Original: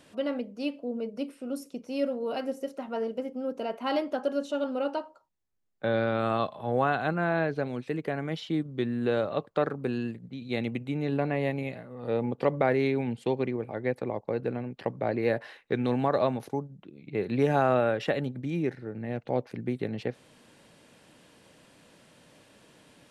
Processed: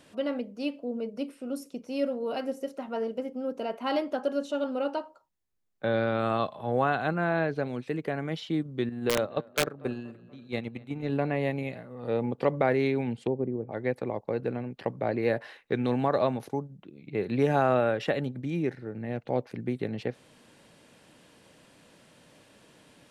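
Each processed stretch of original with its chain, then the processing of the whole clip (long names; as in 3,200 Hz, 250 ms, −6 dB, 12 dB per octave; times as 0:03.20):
0:08.89–0:11.10: tape delay 240 ms, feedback 65%, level −15 dB, low-pass 3,300 Hz + wrap-around overflow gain 16 dB + noise gate −30 dBFS, range −9 dB
0:13.17–0:13.72: low-pass filter 9,300 Hz + treble cut that deepens with the level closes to 560 Hz, closed at −28 dBFS
whole clip: no processing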